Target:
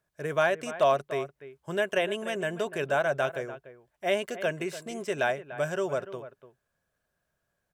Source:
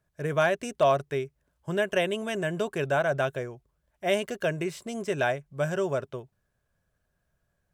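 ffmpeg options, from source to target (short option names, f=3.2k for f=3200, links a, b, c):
-filter_complex "[0:a]lowshelf=f=170:g=-12,acrossover=split=3300[a][b];[a]aecho=1:1:293:0.2[c];[b]alimiter=level_in=9dB:limit=-24dB:level=0:latency=1:release=159,volume=-9dB[d];[c][d]amix=inputs=2:normalize=0"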